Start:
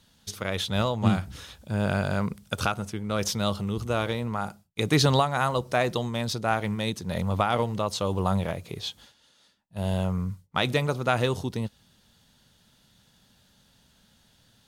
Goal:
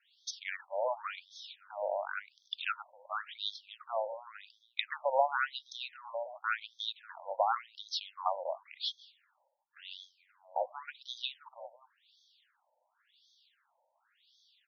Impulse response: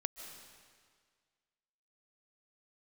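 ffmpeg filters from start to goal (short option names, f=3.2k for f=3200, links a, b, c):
-filter_complex "[0:a]asplit=2[a][b];[b]adelay=524.8,volume=-21dB,highshelf=f=4k:g=-11.8[c];[a][c]amix=inputs=2:normalize=0,afftfilt=real='re*between(b*sr/1024,670*pow(4600/670,0.5+0.5*sin(2*PI*0.92*pts/sr))/1.41,670*pow(4600/670,0.5+0.5*sin(2*PI*0.92*pts/sr))*1.41)':imag='im*between(b*sr/1024,670*pow(4600/670,0.5+0.5*sin(2*PI*0.92*pts/sr))/1.41,670*pow(4600/670,0.5+0.5*sin(2*PI*0.92*pts/sr))*1.41)':win_size=1024:overlap=0.75,volume=-1.5dB"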